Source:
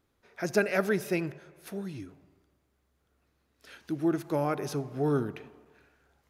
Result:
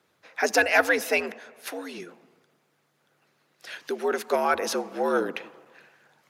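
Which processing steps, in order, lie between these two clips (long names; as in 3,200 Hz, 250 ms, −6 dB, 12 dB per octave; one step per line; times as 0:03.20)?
mid-hump overdrive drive 9 dB, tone 6,800 Hz, clips at −13 dBFS
harmonic and percussive parts rebalanced harmonic −8 dB
frequency shifter +79 Hz
level +8.5 dB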